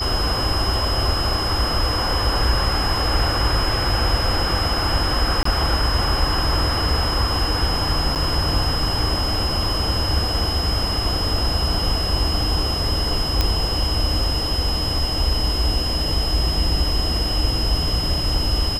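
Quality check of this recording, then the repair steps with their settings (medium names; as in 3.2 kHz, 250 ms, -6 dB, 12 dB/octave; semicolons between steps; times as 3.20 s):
whine 5.1 kHz -24 dBFS
5.43–5.45 s: dropout 24 ms
8.15–8.16 s: dropout 8.1 ms
13.41 s: pop -4 dBFS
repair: de-click; band-stop 5.1 kHz, Q 30; interpolate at 5.43 s, 24 ms; interpolate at 8.15 s, 8.1 ms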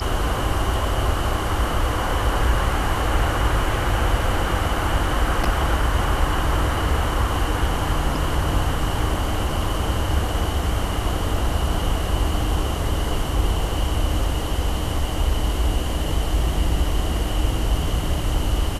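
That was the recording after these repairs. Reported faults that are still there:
nothing left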